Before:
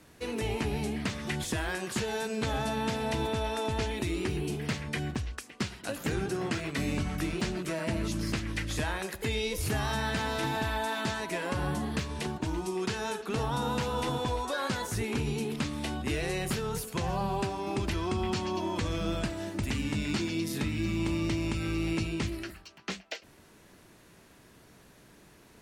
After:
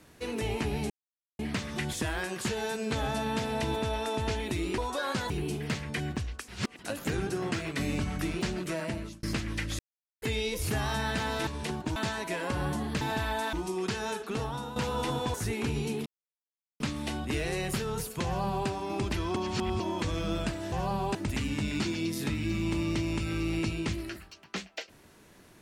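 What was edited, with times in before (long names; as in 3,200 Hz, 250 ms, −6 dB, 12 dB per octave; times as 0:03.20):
0:00.90: splice in silence 0.49 s
0:05.47–0:05.78: reverse
0:07.78–0:08.22: fade out
0:08.78–0:09.21: silence
0:10.46–0:10.98: swap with 0:12.03–0:12.52
0:13.24–0:13.75: fade out, to −11 dB
0:14.33–0:14.85: move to 0:04.29
0:15.57: splice in silence 0.74 s
0:17.02–0:17.45: duplicate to 0:19.49
0:18.13–0:18.57: reverse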